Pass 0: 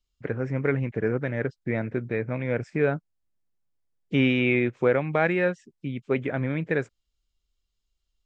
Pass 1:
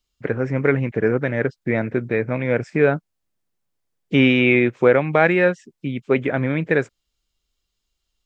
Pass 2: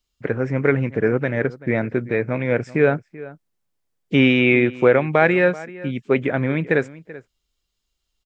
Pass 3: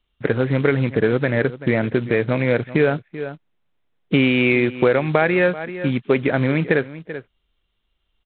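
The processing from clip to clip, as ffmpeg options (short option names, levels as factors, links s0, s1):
-af "lowshelf=f=92:g=-9,volume=2.37"
-filter_complex "[0:a]asplit=2[s0][s1];[s1]adelay=384.8,volume=0.126,highshelf=f=4000:g=-8.66[s2];[s0][s2]amix=inputs=2:normalize=0"
-af "acompressor=threshold=0.0891:ratio=3,aresample=8000,acrusher=bits=5:mode=log:mix=0:aa=0.000001,aresample=44100,volume=2"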